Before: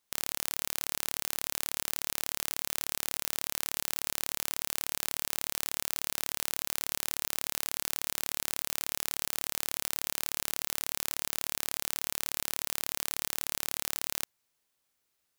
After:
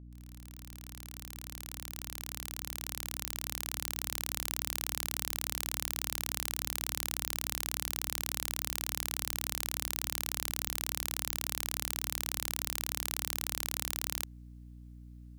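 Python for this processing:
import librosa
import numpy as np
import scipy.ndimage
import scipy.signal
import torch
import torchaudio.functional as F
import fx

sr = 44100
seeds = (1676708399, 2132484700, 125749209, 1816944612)

y = fx.fade_in_head(x, sr, length_s=4.56)
y = fx.add_hum(y, sr, base_hz=60, snr_db=11)
y = y * librosa.db_to_amplitude(-1.5)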